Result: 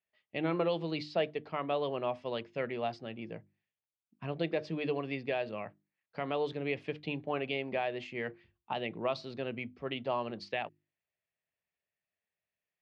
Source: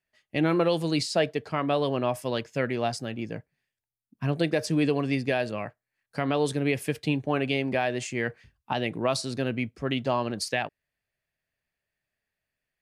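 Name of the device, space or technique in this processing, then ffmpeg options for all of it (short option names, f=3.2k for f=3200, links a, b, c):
guitar cabinet: -af "highpass=97,equalizer=f=130:t=q:w=4:g=-7,equalizer=f=270:t=q:w=4:g=-6,equalizer=f=1.6k:t=q:w=4:g=-6,lowpass=f=3.7k:w=0.5412,lowpass=f=3.7k:w=1.3066,bandreject=f=50:t=h:w=6,bandreject=f=100:t=h:w=6,bandreject=f=150:t=h:w=6,bandreject=f=200:t=h:w=6,bandreject=f=250:t=h:w=6,bandreject=f=300:t=h:w=6,bandreject=f=350:t=h:w=6,volume=-6dB"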